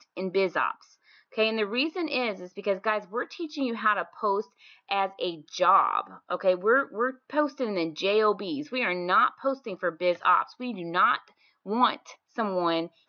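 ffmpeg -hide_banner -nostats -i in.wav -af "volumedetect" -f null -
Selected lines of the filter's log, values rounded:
mean_volume: -27.6 dB
max_volume: -9.0 dB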